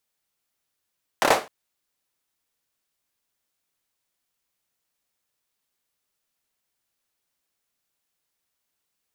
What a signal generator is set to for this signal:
synth clap length 0.26 s, apart 28 ms, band 680 Hz, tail 0.29 s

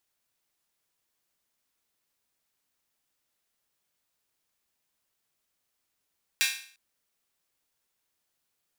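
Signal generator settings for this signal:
open synth hi-hat length 0.35 s, high-pass 2,100 Hz, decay 0.49 s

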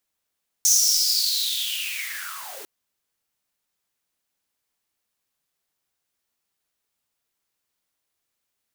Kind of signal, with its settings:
filter sweep on noise white, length 2.00 s highpass, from 6,200 Hz, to 310 Hz, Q 9.5, linear, gain ramp −16.5 dB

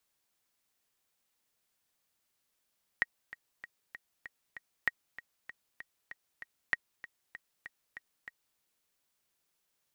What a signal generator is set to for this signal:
click track 194 BPM, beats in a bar 6, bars 3, 1,890 Hz, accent 17 dB −14 dBFS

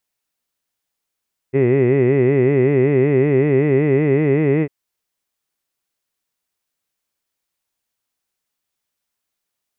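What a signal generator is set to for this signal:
vowel by formant synthesis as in hid, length 3.15 s, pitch 128 Hz, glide +2.5 semitones, vibrato depth 1.4 semitones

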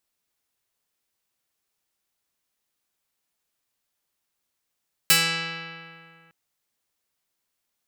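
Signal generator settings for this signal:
Karplus-Strong string E3, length 1.21 s, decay 2.35 s, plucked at 0.47, medium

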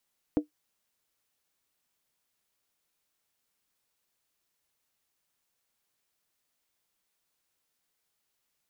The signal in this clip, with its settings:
struck skin, lowest mode 300 Hz, decay 0.12 s, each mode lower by 9 dB, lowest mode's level −17 dB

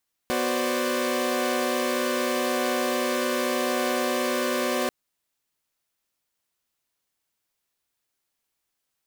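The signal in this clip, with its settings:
held notes B3/F#4/C5/D5 saw, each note −26.5 dBFS 4.59 s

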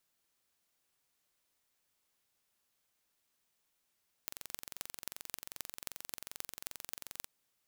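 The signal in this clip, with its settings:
impulse train 22.6 per second, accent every 6, −10.5 dBFS 2.98 s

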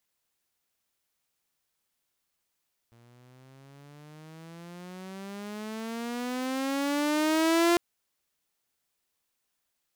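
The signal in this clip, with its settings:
pitch glide with a swell saw, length 4.85 s, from 116 Hz, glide +19 semitones, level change +36 dB, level −17 dB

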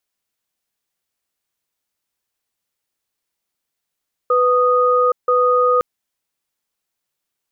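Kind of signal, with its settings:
tone pair in a cadence 497 Hz, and 1,240 Hz, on 0.82 s, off 0.16 s, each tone −14.5 dBFS 1.51 s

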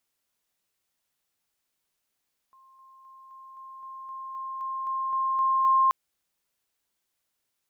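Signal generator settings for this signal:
level staircase 1,060 Hz −53.5 dBFS, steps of 3 dB, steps 13, 0.26 s 0.00 s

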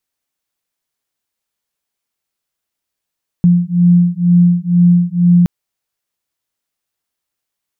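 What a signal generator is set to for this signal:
two tones that beat 174 Hz, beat 2.1 Hz, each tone −10.5 dBFS 2.02 s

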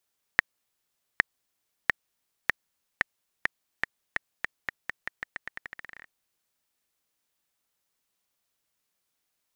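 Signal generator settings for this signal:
bouncing ball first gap 0.81 s, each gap 0.86, 1,850 Hz, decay 12 ms −2 dBFS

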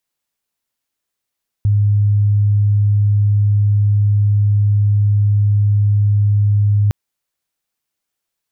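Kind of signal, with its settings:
tone sine 103 Hz −10 dBFS 5.26 s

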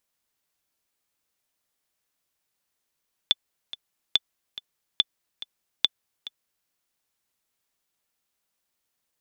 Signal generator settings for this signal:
click track 142 BPM, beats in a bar 2, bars 4, 3,490 Hz, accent 16.5 dB −5.5 dBFS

